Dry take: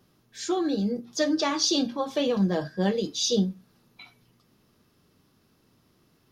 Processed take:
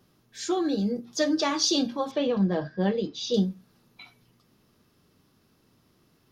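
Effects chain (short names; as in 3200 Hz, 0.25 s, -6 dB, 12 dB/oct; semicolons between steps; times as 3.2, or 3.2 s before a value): 2.11–3.34 air absorption 190 m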